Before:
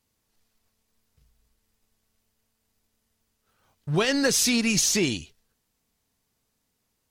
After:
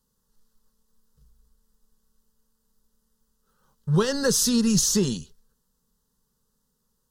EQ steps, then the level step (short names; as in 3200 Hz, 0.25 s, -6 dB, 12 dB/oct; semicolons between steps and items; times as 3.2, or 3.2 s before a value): low shelf 180 Hz +9.5 dB; fixed phaser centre 460 Hz, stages 8; +1.5 dB